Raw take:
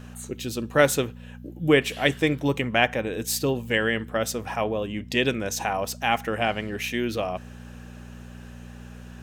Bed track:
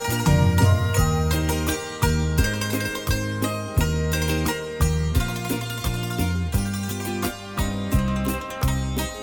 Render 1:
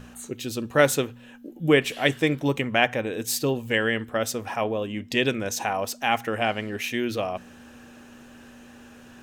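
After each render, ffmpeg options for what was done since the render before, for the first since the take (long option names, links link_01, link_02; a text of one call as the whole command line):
ffmpeg -i in.wav -af "bandreject=frequency=60:width_type=h:width=4,bandreject=frequency=120:width_type=h:width=4,bandreject=frequency=180:width_type=h:width=4" out.wav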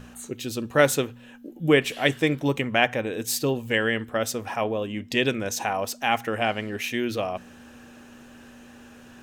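ffmpeg -i in.wav -af anull out.wav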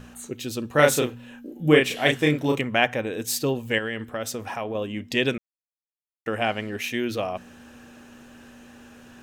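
ffmpeg -i in.wav -filter_complex "[0:a]asettb=1/sr,asplit=3[link_01][link_02][link_03];[link_01]atrim=end=0.754[link_04];[link_02]atrim=start=0.75:end=2.61,asetpts=PTS-STARTPTS,afade=type=in:duration=0.004:curve=qsin,afade=type=out:start_time=1.856:duration=0.004:curve=qsin,asplit=2[link_05][link_06];[link_06]adelay=33,volume=-2.5dB[link_07];[link_05][link_07]amix=inputs=2:normalize=0,atrim=end_sample=82026[link_08];[link_03]atrim=start=2.606[link_09];[link_04][link_08]acrossfade=duration=0.004:curve1=hsin:curve2=qsin[link_10];[link_10][link_09]acrossfade=duration=0.004:curve1=qsin:curve2=hsin,asettb=1/sr,asplit=3[link_11][link_12][link_13];[link_11]atrim=end=3.784[link_14];[link_12]atrim=start=3.78:end=4.75,asetpts=PTS-STARTPTS,afade=type=in:duration=0.004:curve=qsin,afade=type=out:start_time=0.966:duration=0.004:curve=qsin,acompressor=threshold=-27dB:ratio=2.5:attack=3.2:release=140:knee=1:detection=peak[link_15];[link_13]atrim=start=4.746[link_16];[link_14][link_15]acrossfade=duration=0.004:curve1=hsin:curve2=qsin[link_17];[link_17][link_16]acrossfade=duration=0.004:curve1=qsin:curve2=hsin,asplit=3[link_18][link_19][link_20];[link_18]atrim=end=5.38,asetpts=PTS-STARTPTS,afade=type=out:start_time=5.376:duration=0.004:curve=hsin[link_21];[link_19]atrim=start=5.38:end=6.26,asetpts=PTS-STARTPTS,volume=0[link_22];[link_20]atrim=start=6.26,asetpts=PTS-STARTPTS,afade=type=in:duration=0.004:curve=hsin[link_23];[link_21][link_22][link_23]concat=n=3:v=0:a=1" out.wav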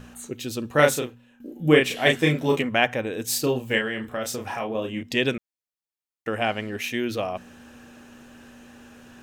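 ffmpeg -i in.wav -filter_complex "[0:a]asettb=1/sr,asplit=3[link_01][link_02][link_03];[link_01]atrim=end=2.054[link_04];[link_02]atrim=start=2.05:end=2.69,asetpts=PTS-STARTPTS,afade=type=in:duration=0.004:curve=qsin,afade=type=out:start_time=0.636:duration=0.004:curve=qsin,asplit=2[link_05][link_06];[link_06]adelay=12,volume=-4.5dB[link_07];[link_05][link_07]amix=inputs=2:normalize=0,atrim=end_sample=28224[link_08];[link_03]atrim=start=2.686[link_09];[link_04][link_08]acrossfade=duration=0.004:curve1=hsin:curve2=qsin[link_10];[link_10][link_09]acrossfade=duration=0.004:curve1=qsin:curve2=hsin,asettb=1/sr,asplit=3[link_11][link_12][link_13];[link_11]atrim=end=3.264[link_14];[link_12]atrim=start=3.26:end=5.03,asetpts=PTS-STARTPTS,afade=type=in:duration=0.004:curve=qsin,afade=type=out:start_time=1.766:duration=0.004:curve=qsin,asplit=2[link_15][link_16];[link_16]adelay=32,volume=-4.5dB[link_17];[link_15][link_17]amix=inputs=2:normalize=0,atrim=end_sample=78057[link_18];[link_13]atrim=start=5.026[link_19];[link_14][link_18]acrossfade=duration=0.004:curve1=hsin:curve2=qsin[link_20];[link_20][link_19]acrossfade=duration=0.004:curve1=qsin:curve2=hsin,asplit=2[link_21][link_22];[link_21]atrim=end=1.4,asetpts=PTS-STARTPTS,afade=type=out:start_time=0.83:duration=0.57:curve=qua:silence=0.188365[link_23];[link_22]atrim=start=1.4,asetpts=PTS-STARTPTS,afade=type=in:duration=0.004:curve=hsin:silence=0.188365[link_24];[link_23][link_24]concat=n=2:v=0:a=1" out.wav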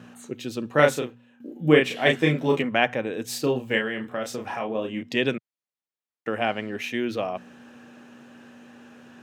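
ffmpeg -i in.wav -af "highpass=frequency=120:width=0.5412,highpass=frequency=120:width=1.3066,highshelf=frequency=6100:gain=-12" out.wav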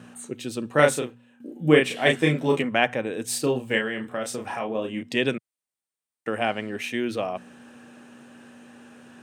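ffmpeg -i in.wav -af "equalizer=frequency=8800:width=3.6:gain=12" out.wav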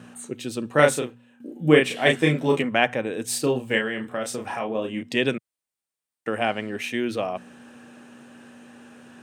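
ffmpeg -i in.wav -af "volume=1dB" out.wav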